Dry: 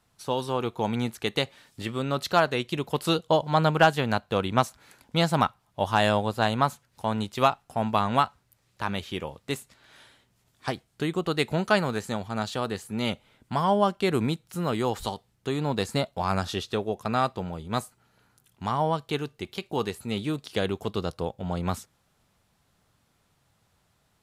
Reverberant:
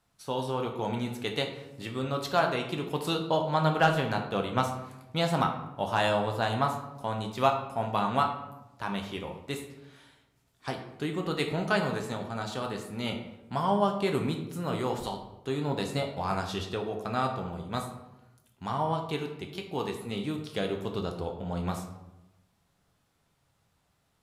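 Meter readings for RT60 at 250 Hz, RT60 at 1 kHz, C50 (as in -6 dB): 1.2 s, 0.90 s, 7.5 dB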